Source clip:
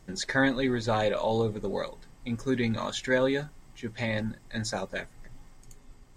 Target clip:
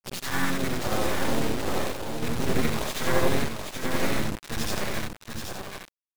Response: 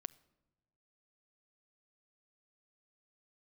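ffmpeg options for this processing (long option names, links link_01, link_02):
-filter_complex "[0:a]afftfilt=real='re':imag='-im':win_size=8192:overlap=0.75,highpass=frequency=42:poles=1,lowshelf=frequency=130:gain=7.5,dynaudnorm=framelen=310:gausssize=9:maxgain=3.5dB,acrusher=bits=3:dc=4:mix=0:aa=0.000001,aecho=1:1:778:0.531,asplit=4[link_01][link_02][link_03][link_04];[link_02]asetrate=22050,aresample=44100,atempo=2,volume=-9dB[link_05];[link_03]asetrate=29433,aresample=44100,atempo=1.49831,volume=-3dB[link_06];[link_04]asetrate=52444,aresample=44100,atempo=0.840896,volume=-18dB[link_07];[link_01][link_05][link_06][link_07]amix=inputs=4:normalize=0,volume=3dB"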